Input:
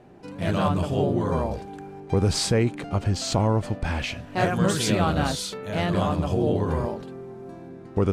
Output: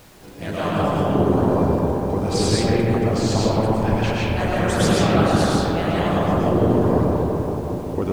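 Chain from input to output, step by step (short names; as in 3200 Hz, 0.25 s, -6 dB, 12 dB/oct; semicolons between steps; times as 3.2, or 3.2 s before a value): digital reverb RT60 4.6 s, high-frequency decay 0.25×, pre-delay 70 ms, DRR -8.5 dB; harmonic-percussive split harmonic -9 dB; added noise pink -48 dBFS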